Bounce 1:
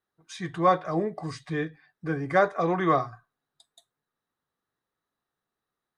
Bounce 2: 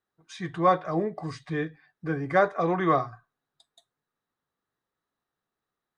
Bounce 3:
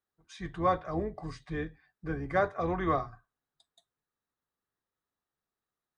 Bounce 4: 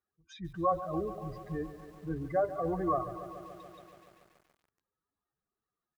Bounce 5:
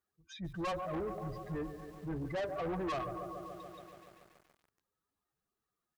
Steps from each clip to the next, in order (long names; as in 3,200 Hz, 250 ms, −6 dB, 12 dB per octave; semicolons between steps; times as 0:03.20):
high-shelf EQ 7,700 Hz −9.5 dB
sub-octave generator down 2 octaves, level −5 dB; level −6 dB
expanding power law on the bin magnitudes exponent 2.2; repeating echo 253 ms, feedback 30%, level −24 dB; feedback echo at a low word length 142 ms, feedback 80%, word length 9 bits, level −13.5 dB; level −1.5 dB
soft clipping −35 dBFS, distortion −6 dB; level +1.5 dB